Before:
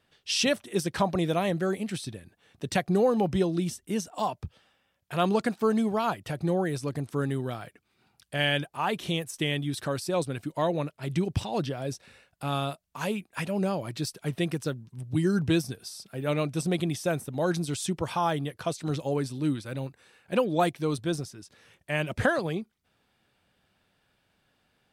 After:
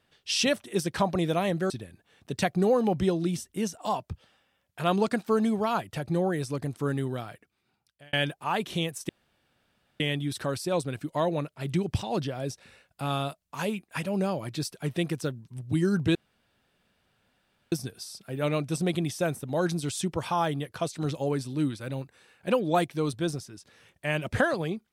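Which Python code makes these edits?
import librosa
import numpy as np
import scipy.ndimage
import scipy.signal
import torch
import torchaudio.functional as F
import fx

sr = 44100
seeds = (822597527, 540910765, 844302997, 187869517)

y = fx.edit(x, sr, fx.cut(start_s=1.7, length_s=0.33),
    fx.fade_out_span(start_s=7.45, length_s=1.01),
    fx.insert_room_tone(at_s=9.42, length_s=0.91),
    fx.insert_room_tone(at_s=15.57, length_s=1.57), tone=tone)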